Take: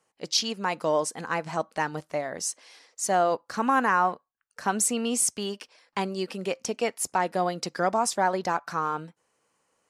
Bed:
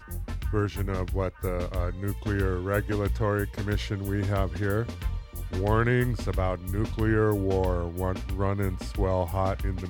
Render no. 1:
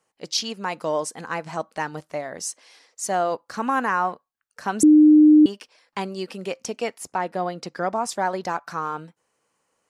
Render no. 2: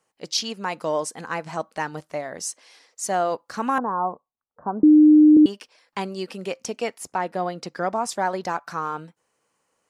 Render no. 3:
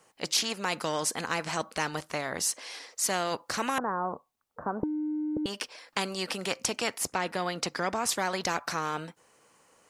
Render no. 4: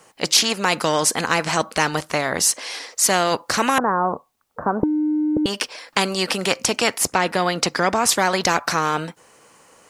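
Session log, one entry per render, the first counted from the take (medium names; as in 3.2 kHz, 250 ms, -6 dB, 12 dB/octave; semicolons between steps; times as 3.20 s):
4.83–5.46 s: bleep 304 Hz -8.5 dBFS; 6.98–8.09 s: treble shelf 4.4 kHz -9 dB
3.78–5.37 s: steep low-pass 1.1 kHz
compression, threshold -16 dBFS, peak gain reduction 5.5 dB; spectrum-flattening compressor 2:1
trim +11 dB; peak limiter -1 dBFS, peak gain reduction 2.5 dB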